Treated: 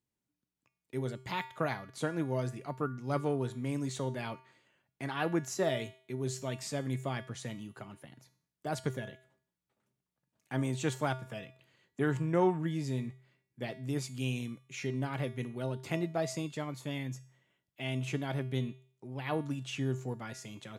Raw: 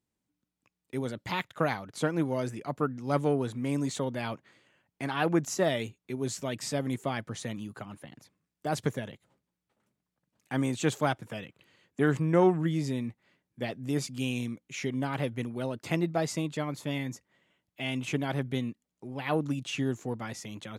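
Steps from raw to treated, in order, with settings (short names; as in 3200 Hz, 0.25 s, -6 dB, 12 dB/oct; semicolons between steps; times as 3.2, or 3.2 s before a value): resonator 130 Hz, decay 0.49 s, harmonics odd, mix 70%; gain +4.5 dB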